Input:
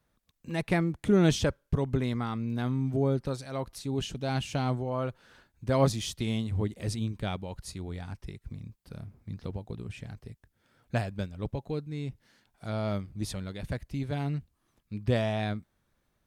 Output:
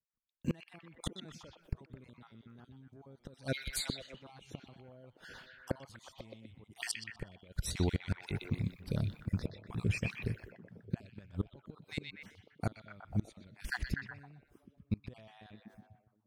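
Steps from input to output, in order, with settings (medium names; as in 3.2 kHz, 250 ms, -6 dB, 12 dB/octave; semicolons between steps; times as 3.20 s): random holes in the spectrogram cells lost 34%; expander -54 dBFS; in parallel at -1 dB: compressor with a negative ratio -33 dBFS, ratio -0.5; on the sum: inverted gate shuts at -22 dBFS, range -30 dB; repeats whose band climbs or falls 123 ms, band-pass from 3 kHz, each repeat -0.7 oct, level -1.5 dB; trim +1.5 dB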